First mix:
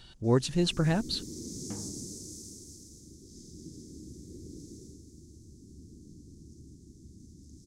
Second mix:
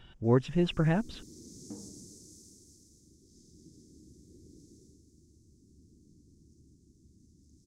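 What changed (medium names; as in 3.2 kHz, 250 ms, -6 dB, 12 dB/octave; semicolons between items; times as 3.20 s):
speech: add Savitzky-Golay filter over 25 samples; first sound -9.5 dB; second sound: add band-pass filter 320 Hz, Q 1.2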